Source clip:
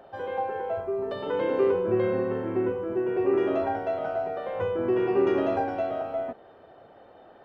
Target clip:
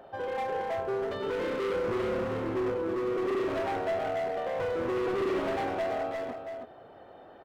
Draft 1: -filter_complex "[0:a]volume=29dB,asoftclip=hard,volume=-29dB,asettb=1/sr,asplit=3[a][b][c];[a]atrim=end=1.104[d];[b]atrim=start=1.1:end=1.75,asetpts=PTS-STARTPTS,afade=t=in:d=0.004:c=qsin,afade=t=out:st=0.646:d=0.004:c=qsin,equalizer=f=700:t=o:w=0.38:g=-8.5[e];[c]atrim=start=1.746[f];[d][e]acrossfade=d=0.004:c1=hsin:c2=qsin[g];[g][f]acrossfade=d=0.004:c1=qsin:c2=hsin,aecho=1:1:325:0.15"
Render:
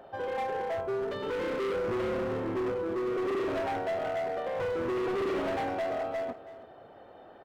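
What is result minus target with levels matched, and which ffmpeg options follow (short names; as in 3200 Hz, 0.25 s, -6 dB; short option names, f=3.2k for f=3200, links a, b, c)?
echo-to-direct -9.5 dB
-filter_complex "[0:a]volume=29dB,asoftclip=hard,volume=-29dB,asettb=1/sr,asplit=3[a][b][c];[a]atrim=end=1.104[d];[b]atrim=start=1.1:end=1.75,asetpts=PTS-STARTPTS,afade=t=in:d=0.004:c=qsin,afade=t=out:st=0.646:d=0.004:c=qsin,equalizer=f=700:t=o:w=0.38:g=-8.5[e];[c]atrim=start=1.746[f];[d][e]acrossfade=d=0.004:c1=hsin:c2=qsin[g];[g][f]acrossfade=d=0.004:c1=qsin:c2=hsin,aecho=1:1:325:0.447"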